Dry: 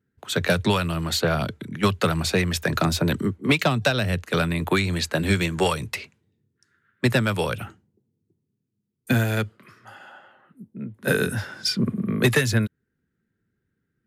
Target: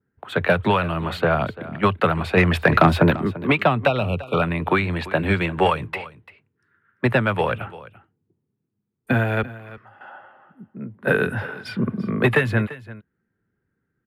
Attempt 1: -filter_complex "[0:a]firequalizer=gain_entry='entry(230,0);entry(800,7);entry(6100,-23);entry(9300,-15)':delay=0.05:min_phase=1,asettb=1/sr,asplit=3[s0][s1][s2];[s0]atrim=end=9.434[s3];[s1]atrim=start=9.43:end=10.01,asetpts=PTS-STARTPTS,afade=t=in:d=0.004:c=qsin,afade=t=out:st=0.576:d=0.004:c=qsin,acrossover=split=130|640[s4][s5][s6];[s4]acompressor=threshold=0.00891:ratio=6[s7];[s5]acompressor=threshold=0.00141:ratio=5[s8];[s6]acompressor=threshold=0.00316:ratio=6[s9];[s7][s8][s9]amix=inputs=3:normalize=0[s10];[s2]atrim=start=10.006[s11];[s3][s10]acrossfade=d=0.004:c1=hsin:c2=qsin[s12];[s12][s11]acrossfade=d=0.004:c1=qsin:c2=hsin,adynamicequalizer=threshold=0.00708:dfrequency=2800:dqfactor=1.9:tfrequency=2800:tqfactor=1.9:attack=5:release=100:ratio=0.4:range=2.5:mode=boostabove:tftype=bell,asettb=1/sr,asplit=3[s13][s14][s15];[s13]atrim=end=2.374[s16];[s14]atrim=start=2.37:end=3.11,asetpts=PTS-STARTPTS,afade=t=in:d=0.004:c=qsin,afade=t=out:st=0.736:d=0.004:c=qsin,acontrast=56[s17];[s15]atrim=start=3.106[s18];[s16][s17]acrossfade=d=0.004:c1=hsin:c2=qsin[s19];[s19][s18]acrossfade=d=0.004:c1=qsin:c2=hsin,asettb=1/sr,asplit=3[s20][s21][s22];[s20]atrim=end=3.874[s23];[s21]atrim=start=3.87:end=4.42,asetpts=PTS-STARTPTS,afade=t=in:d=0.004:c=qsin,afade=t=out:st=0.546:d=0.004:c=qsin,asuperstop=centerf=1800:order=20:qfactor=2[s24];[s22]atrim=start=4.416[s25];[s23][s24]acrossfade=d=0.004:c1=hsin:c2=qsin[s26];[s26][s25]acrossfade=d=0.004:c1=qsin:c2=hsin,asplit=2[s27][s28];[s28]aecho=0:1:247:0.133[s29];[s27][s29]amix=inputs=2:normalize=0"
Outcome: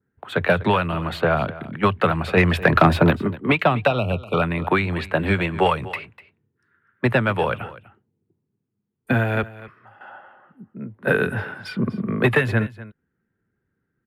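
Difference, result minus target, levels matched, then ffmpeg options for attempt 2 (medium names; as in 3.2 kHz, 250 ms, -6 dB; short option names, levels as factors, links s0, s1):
echo 95 ms early
-filter_complex "[0:a]firequalizer=gain_entry='entry(230,0);entry(800,7);entry(6100,-23);entry(9300,-15)':delay=0.05:min_phase=1,asettb=1/sr,asplit=3[s0][s1][s2];[s0]atrim=end=9.434[s3];[s1]atrim=start=9.43:end=10.01,asetpts=PTS-STARTPTS,afade=t=in:d=0.004:c=qsin,afade=t=out:st=0.576:d=0.004:c=qsin,acrossover=split=130|640[s4][s5][s6];[s4]acompressor=threshold=0.00891:ratio=6[s7];[s5]acompressor=threshold=0.00141:ratio=5[s8];[s6]acompressor=threshold=0.00316:ratio=6[s9];[s7][s8][s9]amix=inputs=3:normalize=0[s10];[s2]atrim=start=10.006[s11];[s3][s10]acrossfade=d=0.004:c1=hsin:c2=qsin[s12];[s12][s11]acrossfade=d=0.004:c1=qsin:c2=hsin,adynamicequalizer=threshold=0.00708:dfrequency=2800:dqfactor=1.9:tfrequency=2800:tqfactor=1.9:attack=5:release=100:ratio=0.4:range=2.5:mode=boostabove:tftype=bell,asettb=1/sr,asplit=3[s13][s14][s15];[s13]atrim=end=2.374[s16];[s14]atrim=start=2.37:end=3.11,asetpts=PTS-STARTPTS,afade=t=in:d=0.004:c=qsin,afade=t=out:st=0.736:d=0.004:c=qsin,acontrast=56[s17];[s15]atrim=start=3.106[s18];[s16][s17]acrossfade=d=0.004:c1=hsin:c2=qsin[s19];[s19][s18]acrossfade=d=0.004:c1=qsin:c2=hsin,asettb=1/sr,asplit=3[s20][s21][s22];[s20]atrim=end=3.874[s23];[s21]atrim=start=3.87:end=4.42,asetpts=PTS-STARTPTS,afade=t=in:d=0.004:c=qsin,afade=t=out:st=0.546:d=0.004:c=qsin,asuperstop=centerf=1800:order=20:qfactor=2[s24];[s22]atrim=start=4.416[s25];[s23][s24]acrossfade=d=0.004:c1=hsin:c2=qsin[s26];[s26][s25]acrossfade=d=0.004:c1=qsin:c2=hsin,asplit=2[s27][s28];[s28]aecho=0:1:342:0.133[s29];[s27][s29]amix=inputs=2:normalize=0"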